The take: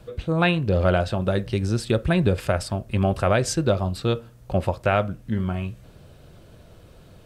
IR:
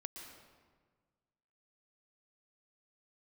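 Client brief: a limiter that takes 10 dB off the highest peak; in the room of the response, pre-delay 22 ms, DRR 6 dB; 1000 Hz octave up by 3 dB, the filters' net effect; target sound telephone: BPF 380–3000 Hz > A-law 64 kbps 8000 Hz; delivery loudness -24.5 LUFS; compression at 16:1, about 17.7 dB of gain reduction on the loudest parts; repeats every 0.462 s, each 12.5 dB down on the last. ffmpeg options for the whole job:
-filter_complex "[0:a]equalizer=f=1k:t=o:g=5,acompressor=threshold=-32dB:ratio=16,alimiter=level_in=7.5dB:limit=-24dB:level=0:latency=1,volume=-7.5dB,aecho=1:1:462|924|1386:0.237|0.0569|0.0137,asplit=2[a][b];[1:a]atrim=start_sample=2205,adelay=22[c];[b][c]afir=irnorm=-1:irlink=0,volume=-3dB[d];[a][d]amix=inputs=2:normalize=0,highpass=380,lowpass=3k,volume=21.5dB" -ar 8000 -c:a pcm_alaw

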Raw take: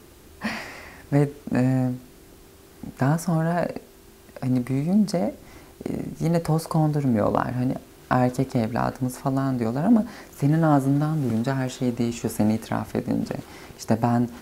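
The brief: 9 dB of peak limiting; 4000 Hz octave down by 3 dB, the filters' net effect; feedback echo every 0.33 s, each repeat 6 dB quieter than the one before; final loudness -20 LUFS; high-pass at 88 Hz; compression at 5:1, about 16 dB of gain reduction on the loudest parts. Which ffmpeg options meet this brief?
-af "highpass=88,equalizer=f=4k:t=o:g=-4,acompressor=threshold=-33dB:ratio=5,alimiter=level_in=2dB:limit=-24dB:level=0:latency=1,volume=-2dB,aecho=1:1:330|660|990|1320|1650|1980:0.501|0.251|0.125|0.0626|0.0313|0.0157,volume=17dB"

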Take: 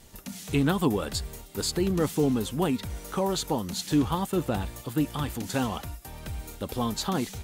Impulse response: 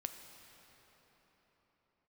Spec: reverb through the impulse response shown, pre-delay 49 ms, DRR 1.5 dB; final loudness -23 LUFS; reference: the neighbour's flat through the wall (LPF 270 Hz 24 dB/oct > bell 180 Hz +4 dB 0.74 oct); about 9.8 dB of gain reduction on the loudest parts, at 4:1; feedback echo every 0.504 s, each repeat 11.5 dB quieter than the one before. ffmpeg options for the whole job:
-filter_complex "[0:a]acompressor=threshold=-31dB:ratio=4,aecho=1:1:504|1008|1512:0.266|0.0718|0.0194,asplit=2[a][b];[1:a]atrim=start_sample=2205,adelay=49[c];[b][c]afir=irnorm=-1:irlink=0,volume=0.5dB[d];[a][d]amix=inputs=2:normalize=0,lowpass=f=270:w=0.5412,lowpass=f=270:w=1.3066,equalizer=f=180:t=o:w=0.74:g=4,volume=12dB"

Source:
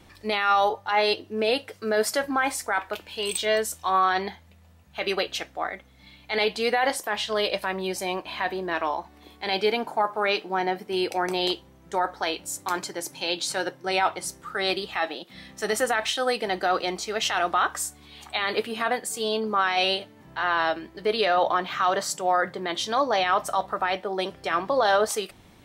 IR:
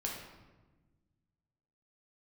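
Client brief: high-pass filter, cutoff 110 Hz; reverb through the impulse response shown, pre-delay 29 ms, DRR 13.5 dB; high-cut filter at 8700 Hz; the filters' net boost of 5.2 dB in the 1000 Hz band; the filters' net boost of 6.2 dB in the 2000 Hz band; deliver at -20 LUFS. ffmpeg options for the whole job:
-filter_complex "[0:a]highpass=110,lowpass=8.7k,equalizer=f=1k:t=o:g=5.5,equalizer=f=2k:t=o:g=6,asplit=2[a][b];[1:a]atrim=start_sample=2205,adelay=29[c];[b][c]afir=irnorm=-1:irlink=0,volume=-15.5dB[d];[a][d]amix=inputs=2:normalize=0,volume=1.5dB"

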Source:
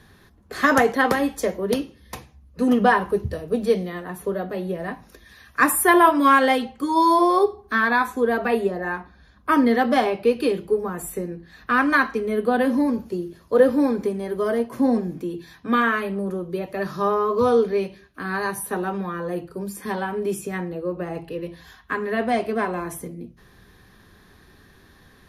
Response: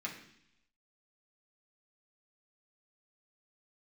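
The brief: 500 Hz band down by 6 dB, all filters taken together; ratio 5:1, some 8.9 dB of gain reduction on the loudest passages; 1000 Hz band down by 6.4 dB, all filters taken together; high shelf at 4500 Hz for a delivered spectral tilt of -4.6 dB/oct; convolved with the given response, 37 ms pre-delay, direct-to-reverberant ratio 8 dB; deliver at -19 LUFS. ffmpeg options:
-filter_complex "[0:a]equalizer=f=500:t=o:g=-6,equalizer=f=1k:t=o:g=-6.5,highshelf=f=4.5k:g=6.5,acompressor=threshold=-25dB:ratio=5,asplit=2[a][b];[1:a]atrim=start_sample=2205,adelay=37[c];[b][c]afir=irnorm=-1:irlink=0,volume=-9.5dB[d];[a][d]amix=inputs=2:normalize=0,volume=10.5dB"

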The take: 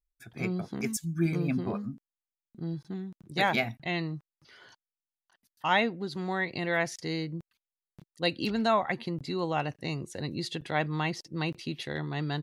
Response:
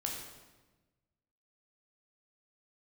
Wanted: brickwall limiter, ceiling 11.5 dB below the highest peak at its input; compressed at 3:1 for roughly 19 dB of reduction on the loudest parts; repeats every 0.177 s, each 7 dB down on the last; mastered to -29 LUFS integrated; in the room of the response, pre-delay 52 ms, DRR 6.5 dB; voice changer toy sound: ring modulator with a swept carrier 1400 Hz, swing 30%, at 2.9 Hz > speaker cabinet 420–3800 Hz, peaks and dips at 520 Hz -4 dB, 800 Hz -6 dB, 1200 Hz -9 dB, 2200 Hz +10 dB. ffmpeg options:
-filter_complex "[0:a]acompressor=threshold=-48dB:ratio=3,alimiter=level_in=18dB:limit=-24dB:level=0:latency=1,volume=-18dB,aecho=1:1:177|354|531|708|885:0.447|0.201|0.0905|0.0407|0.0183,asplit=2[a][b];[1:a]atrim=start_sample=2205,adelay=52[c];[b][c]afir=irnorm=-1:irlink=0,volume=-8dB[d];[a][d]amix=inputs=2:normalize=0,aeval=exprs='val(0)*sin(2*PI*1400*n/s+1400*0.3/2.9*sin(2*PI*2.9*n/s))':c=same,highpass=420,equalizer=f=520:t=q:w=4:g=-4,equalizer=f=800:t=q:w=4:g=-6,equalizer=f=1.2k:t=q:w=4:g=-9,equalizer=f=2.2k:t=q:w=4:g=10,lowpass=f=3.8k:w=0.5412,lowpass=f=3.8k:w=1.3066,volume=20.5dB"

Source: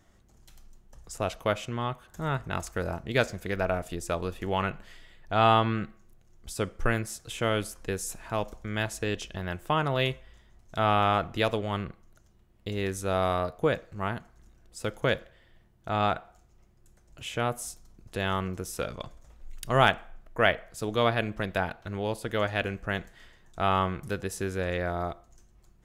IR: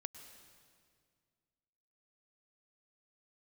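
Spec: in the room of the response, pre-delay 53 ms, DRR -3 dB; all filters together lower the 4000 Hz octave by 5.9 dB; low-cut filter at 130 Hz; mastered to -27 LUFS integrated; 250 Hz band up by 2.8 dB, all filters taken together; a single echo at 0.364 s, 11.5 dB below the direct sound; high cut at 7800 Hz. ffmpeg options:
-filter_complex "[0:a]highpass=130,lowpass=7.8k,equalizer=f=250:t=o:g=4.5,equalizer=f=4k:t=o:g=-8,aecho=1:1:364:0.266,asplit=2[a][b];[1:a]atrim=start_sample=2205,adelay=53[c];[b][c]afir=irnorm=-1:irlink=0,volume=6.5dB[d];[a][d]amix=inputs=2:normalize=0,volume=-2dB"

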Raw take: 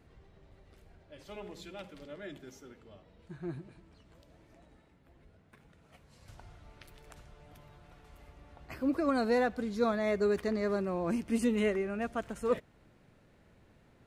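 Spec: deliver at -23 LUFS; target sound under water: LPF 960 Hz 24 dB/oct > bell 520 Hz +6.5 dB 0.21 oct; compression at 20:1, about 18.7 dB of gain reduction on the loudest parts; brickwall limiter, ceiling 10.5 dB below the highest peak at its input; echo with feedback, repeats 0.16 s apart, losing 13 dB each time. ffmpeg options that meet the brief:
-af "acompressor=threshold=-43dB:ratio=20,alimiter=level_in=17dB:limit=-24dB:level=0:latency=1,volume=-17dB,lowpass=f=960:w=0.5412,lowpass=f=960:w=1.3066,equalizer=f=520:t=o:w=0.21:g=6.5,aecho=1:1:160|320|480:0.224|0.0493|0.0108,volume=28.5dB"

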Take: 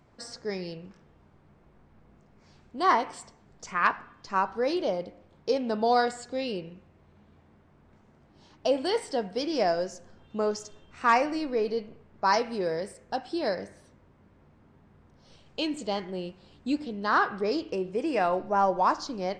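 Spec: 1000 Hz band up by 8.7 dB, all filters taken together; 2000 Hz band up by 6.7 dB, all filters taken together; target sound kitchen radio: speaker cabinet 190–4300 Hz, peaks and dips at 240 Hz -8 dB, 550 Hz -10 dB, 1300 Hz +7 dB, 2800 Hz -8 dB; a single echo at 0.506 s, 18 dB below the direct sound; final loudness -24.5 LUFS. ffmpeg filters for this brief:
-af "highpass=190,equalizer=f=240:t=q:w=4:g=-8,equalizer=f=550:t=q:w=4:g=-10,equalizer=f=1.3k:t=q:w=4:g=7,equalizer=f=2.8k:t=q:w=4:g=-8,lowpass=f=4.3k:w=0.5412,lowpass=f=4.3k:w=1.3066,equalizer=f=1k:t=o:g=8,equalizer=f=2k:t=o:g=3.5,aecho=1:1:506:0.126,volume=-3dB"

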